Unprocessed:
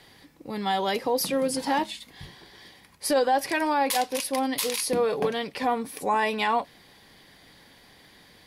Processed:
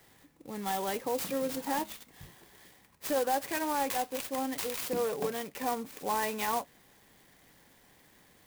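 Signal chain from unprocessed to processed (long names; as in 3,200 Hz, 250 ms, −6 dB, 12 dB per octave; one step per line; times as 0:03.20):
converter with an unsteady clock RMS 0.058 ms
level −7 dB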